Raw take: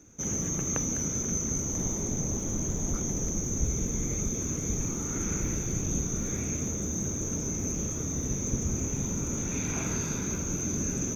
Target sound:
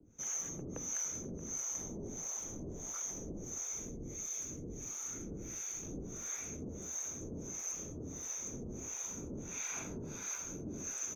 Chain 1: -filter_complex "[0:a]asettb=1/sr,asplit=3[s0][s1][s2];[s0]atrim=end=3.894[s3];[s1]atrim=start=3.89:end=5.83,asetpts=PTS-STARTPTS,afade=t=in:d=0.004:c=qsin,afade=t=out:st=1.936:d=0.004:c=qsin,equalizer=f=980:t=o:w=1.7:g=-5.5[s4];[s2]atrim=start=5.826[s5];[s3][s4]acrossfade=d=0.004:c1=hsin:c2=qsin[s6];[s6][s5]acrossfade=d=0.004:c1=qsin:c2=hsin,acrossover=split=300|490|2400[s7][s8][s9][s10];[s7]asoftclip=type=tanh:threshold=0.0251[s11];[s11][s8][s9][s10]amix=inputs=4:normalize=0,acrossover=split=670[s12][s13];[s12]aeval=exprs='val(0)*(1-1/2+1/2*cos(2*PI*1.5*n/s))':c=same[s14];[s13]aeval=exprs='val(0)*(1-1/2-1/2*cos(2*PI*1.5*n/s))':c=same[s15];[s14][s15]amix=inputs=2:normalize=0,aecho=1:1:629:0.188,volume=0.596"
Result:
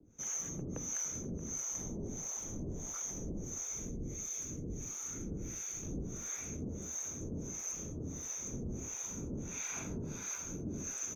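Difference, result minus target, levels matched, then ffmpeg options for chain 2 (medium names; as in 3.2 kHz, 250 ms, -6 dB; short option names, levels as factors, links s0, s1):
saturation: distortion -5 dB
-filter_complex "[0:a]asettb=1/sr,asplit=3[s0][s1][s2];[s0]atrim=end=3.894[s3];[s1]atrim=start=3.89:end=5.83,asetpts=PTS-STARTPTS,afade=t=in:d=0.004:c=qsin,afade=t=out:st=1.936:d=0.004:c=qsin,equalizer=f=980:t=o:w=1.7:g=-5.5[s4];[s2]atrim=start=5.826[s5];[s3][s4]acrossfade=d=0.004:c1=hsin:c2=qsin[s6];[s6][s5]acrossfade=d=0.004:c1=qsin:c2=hsin,acrossover=split=300|490|2400[s7][s8][s9][s10];[s7]asoftclip=type=tanh:threshold=0.01[s11];[s11][s8][s9][s10]amix=inputs=4:normalize=0,acrossover=split=670[s12][s13];[s12]aeval=exprs='val(0)*(1-1/2+1/2*cos(2*PI*1.5*n/s))':c=same[s14];[s13]aeval=exprs='val(0)*(1-1/2-1/2*cos(2*PI*1.5*n/s))':c=same[s15];[s14][s15]amix=inputs=2:normalize=0,aecho=1:1:629:0.188,volume=0.596"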